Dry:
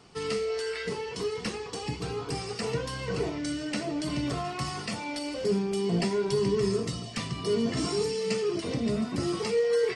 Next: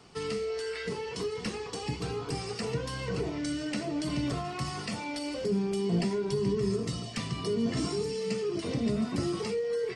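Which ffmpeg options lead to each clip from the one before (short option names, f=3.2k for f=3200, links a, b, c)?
-filter_complex "[0:a]acrossover=split=340[a][b];[b]acompressor=threshold=-34dB:ratio=6[c];[a][c]amix=inputs=2:normalize=0"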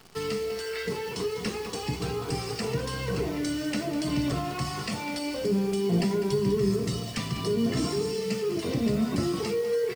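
-af "acrusher=bits=9:dc=4:mix=0:aa=0.000001,aecho=1:1:200:0.266,volume=3dB"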